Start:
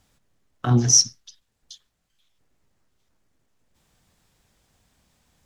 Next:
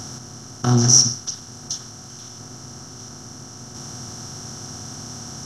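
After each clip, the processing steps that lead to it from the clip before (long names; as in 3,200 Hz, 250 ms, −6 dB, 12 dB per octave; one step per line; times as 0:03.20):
compressor on every frequency bin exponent 0.4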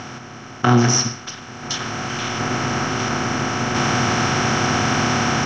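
low-shelf EQ 180 Hz −11.5 dB
automatic gain control gain up to 15 dB
low-pass with resonance 2,400 Hz, resonance Q 3.2
level +7 dB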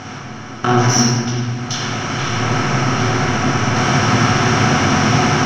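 in parallel at −9 dB: soft clipping −17.5 dBFS, distortion −10 dB
on the sum: convolution reverb RT60 1.8 s, pre-delay 19 ms, DRR −3 dB
level −3 dB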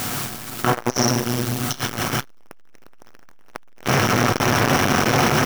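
background noise white −29 dBFS
saturating transformer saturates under 1,200 Hz
level +1.5 dB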